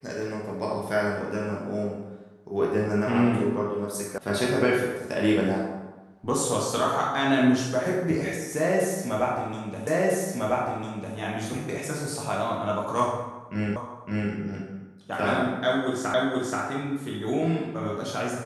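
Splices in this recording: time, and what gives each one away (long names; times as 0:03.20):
0:04.18: cut off before it has died away
0:09.87: the same again, the last 1.3 s
0:13.76: the same again, the last 0.56 s
0:16.14: the same again, the last 0.48 s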